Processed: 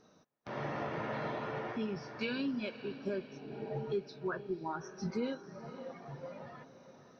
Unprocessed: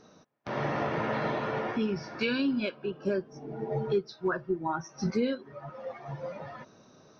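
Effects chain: diffused feedback echo 0.532 s, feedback 53%, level -13 dB; gain -7.5 dB

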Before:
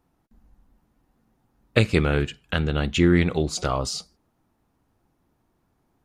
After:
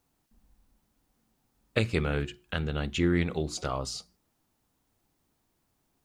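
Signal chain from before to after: notches 60/120/180/240/300/360 Hz; requantised 12-bit, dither triangular; gain -7 dB

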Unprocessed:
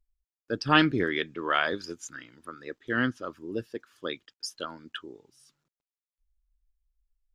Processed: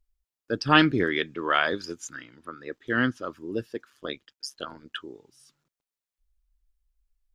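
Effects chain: 2.2–2.71 high shelf 8600 Hz -> 5200 Hz -11 dB; 3.9–4.93 AM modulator 140 Hz, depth 60%; gain +2.5 dB

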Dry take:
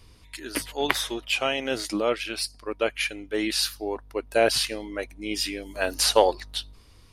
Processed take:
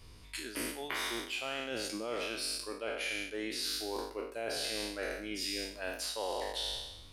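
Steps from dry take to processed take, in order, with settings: spectral trails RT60 0.97 s; reverse; compressor 12:1, threshold -30 dBFS, peak gain reduction 20 dB; reverse; gain -3.5 dB

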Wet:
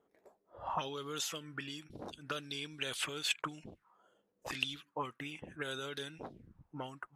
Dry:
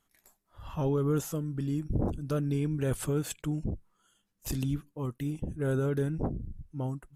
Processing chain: auto-wah 460–3800 Hz, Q 3.3, up, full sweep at -27 dBFS; gain +16 dB

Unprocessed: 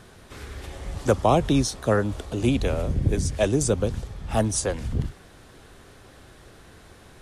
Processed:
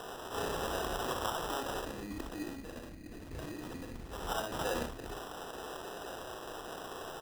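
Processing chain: self-modulated delay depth 0.66 ms; de-hum 51.66 Hz, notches 3; in parallel at -9 dB: sine folder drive 16 dB, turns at -6.5 dBFS; on the sum: notch 570 Hz, Q 19; negative-ratio compressor -20 dBFS, ratio -0.5; bell 110 Hz -6.5 dB 1.7 oct; spectral gain 1.81–4.12, 360–1700 Hz -16 dB; three-band isolator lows -18 dB, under 370 Hz, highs -16 dB, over 2200 Hz; early reflections 34 ms -8 dB, 63 ms -5.5 dB; sample-and-hold 20×; attack slew limiter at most 130 dB/s; gain -6.5 dB

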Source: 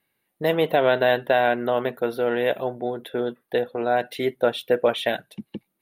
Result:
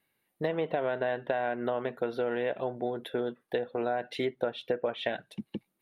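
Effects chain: treble ducked by the level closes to 2300 Hz, closed at -17 dBFS; compressor, threshold -24 dBFS, peak gain reduction 10 dB; gain -2.5 dB

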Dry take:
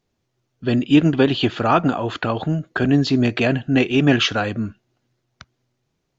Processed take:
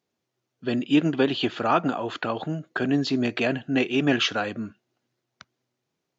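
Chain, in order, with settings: Bessel high-pass 210 Hz, order 2; gain -4.5 dB

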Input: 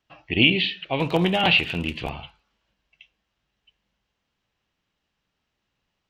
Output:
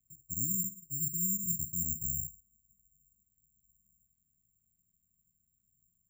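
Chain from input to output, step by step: inverse Chebyshev low-pass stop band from 690 Hz, stop band 60 dB; reverse; compressor 5:1, threshold -40 dBFS, peak gain reduction 16.5 dB; reverse; careless resampling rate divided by 6×, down filtered, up zero stuff

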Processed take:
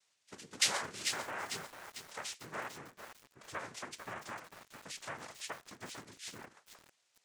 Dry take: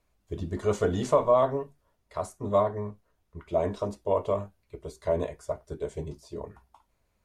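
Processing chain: painted sound fall, 0.61–0.9, 320–4300 Hz -27 dBFS; limiter -18.5 dBFS, peak gain reduction 8.5 dB; compressor 2:1, threshold -36 dBFS, peak gain reduction 7.5 dB; differentiator; noise vocoder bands 3; lo-fi delay 0.447 s, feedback 55%, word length 10-bit, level -7 dB; gain +12.5 dB

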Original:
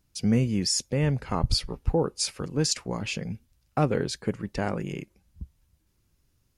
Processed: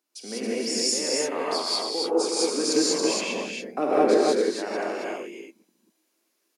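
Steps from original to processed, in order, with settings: steep high-pass 280 Hz 36 dB/oct; 2.07–4.16 low shelf 420 Hz +10.5 dB; tapped delay 0.154/0.274 s -10/-3.5 dB; non-linear reverb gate 0.22 s rising, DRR -7 dB; gain -5.5 dB

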